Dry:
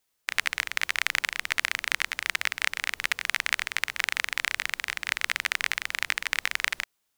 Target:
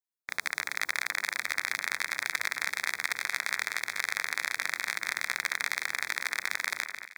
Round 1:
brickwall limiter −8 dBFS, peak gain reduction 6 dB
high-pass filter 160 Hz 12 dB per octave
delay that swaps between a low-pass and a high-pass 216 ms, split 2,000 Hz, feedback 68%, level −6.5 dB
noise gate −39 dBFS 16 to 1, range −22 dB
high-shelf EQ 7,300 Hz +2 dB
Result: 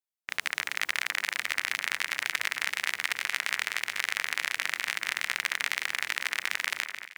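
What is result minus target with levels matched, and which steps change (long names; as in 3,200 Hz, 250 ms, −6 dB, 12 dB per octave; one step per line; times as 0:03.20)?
4,000 Hz band +2.5 dB
add after noise gate: Butterworth band-reject 2,900 Hz, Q 2.7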